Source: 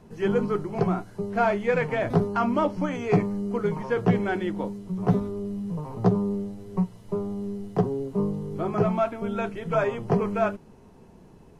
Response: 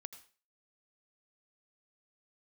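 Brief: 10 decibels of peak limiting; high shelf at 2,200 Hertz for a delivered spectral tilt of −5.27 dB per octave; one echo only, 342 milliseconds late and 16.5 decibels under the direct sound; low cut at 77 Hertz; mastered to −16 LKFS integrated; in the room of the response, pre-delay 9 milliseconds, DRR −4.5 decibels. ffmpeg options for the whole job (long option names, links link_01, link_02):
-filter_complex "[0:a]highpass=77,highshelf=frequency=2200:gain=-3,alimiter=limit=-18.5dB:level=0:latency=1,aecho=1:1:342:0.15,asplit=2[link_01][link_02];[1:a]atrim=start_sample=2205,adelay=9[link_03];[link_02][link_03]afir=irnorm=-1:irlink=0,volume=9.5dB[link_04];[link_01][link_04]amix=inputs=2:normalize=0,volume=7.5dB"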